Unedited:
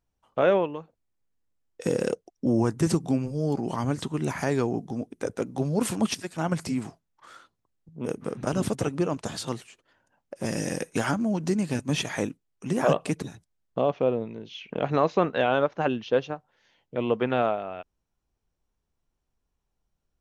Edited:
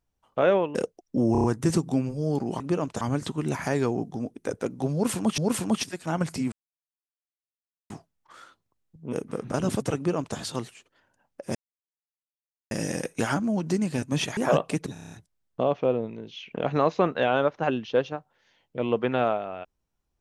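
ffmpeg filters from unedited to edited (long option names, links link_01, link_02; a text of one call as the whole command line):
ffmpeg -i in.wav -filter_complex "[0:a]asplit=18[link_01][link_02][link_03][link_04][link_05][link_06][link_07][link_08][link_09][link_10][link_11][link_12][link_13][link_14][link_15][link_16][link_17][link_18];[link_01]atrim=end=0.752[link_19];[link_02]atrim=start=2.038:end=2.642[link_20];[link_03]atrim=start=2.608:end=2.642[link_21];[link_04]atrim=start=2.608:end=2.642[link_22];[link_05]atrim=start=2.608:end=2.642[link_23];[link_06]atrim=start=2.608:end=3.772[link_24];[link_07]atrim=start=8.888:end=9.302[link_25];[link_08]atrim=start=3.768:end=6.142[link_26];[link_09]atrim=start=5.688:end=6.83,asetpts=PTS-STARTPTS,afade=type=out:start_time=1.138:duration=0.004:curve=hsin,apad=pad_dur=1.38[link_27];[link_10]atrim=start=6.83:end=10.48,asetpts=PTS-STARTPTS,afade=type=in:duration=0.004:curve=hsin,afade=type=out:start_time=3.646:duration=0.004:curve=hsin,apad=pad_dur=1.16[link_28];[link_11]atrim=start=10.48:end=12.142,asetpts=PTS-STARTPTS,afade=type=in:duration=0.004:curve=hsin[link_29];[link_12]atrim=start=12.728:end=13.322[link_30];[link_13]atrim=start=13.288:end=13.322[link_31];[link_14]atrim=start=13.288:end=13.322[link_32];[link_15]atrim=start=13.288:end=13.322[link_33];[link_16]atrim=start=13.288:end=13.322[link_34];[link_17]atrim=start=13.288:end=13.322[link_35];[link_18]atrim=start=13.288[link_36];[link_19][link_20]acrossfade=duration=0.004:curve1=hsin:curve2=hsin[link_37];[link_37][link_21]acrossfade=duration=0.004:curve1=hsin:curve2=hsin[link_38];[link_38][link_22]acrossfade=duration=0.004:curve1=hsin:curve2=hsin[link_39];[link_39][link_23]acrossfade=duration=0.004:curve1=hsin:curve2=hsin[link_40];[link_40][link_24]acrossfade=duration=0.004:curve1=hsin:curve2=hsin[link_41];[link_41][link_25]acrossfade=duration=0.004:curve1=hsin:curve2=hsin[link_42];[link_42][link_26]acrossfade=duration=0.004:curve1=hsin:curve2=hsin[link_43];[link_27][link_28][link_29]concat=n=3:v=0:a=1[link_44];[link_43][link_44]acrossfade=duration=0.004:curve1=hsin:curve2=hsin[link_45];[link_45][link_30]acrossfade=duration=0.004:curve1=hsin:curve2=hsin[link_46];[link_46][link_31]acrossfade=duration=0.004:curve1=hsin:curve2=hsin[link_47];[link_47][link_32]acrossfade=duration=0.004:curve1=hsin:curve2=hsin[link_48];[link_48][link_33]acrossfade=duration=0.004:curve1=hsin:curve2=hsin[link_49];[link_49][link_34]acrossfade=duration=0.004:curve1=hsin:curve2=hsin[link_50];[link_50][link_35]acrossfade=duration=0.004:curve1=hsin:curve2=hsin[link_51];[link_51][link_36]acrossfade=duration=0.004:curve1=hsin:curve2=hsin" out.wav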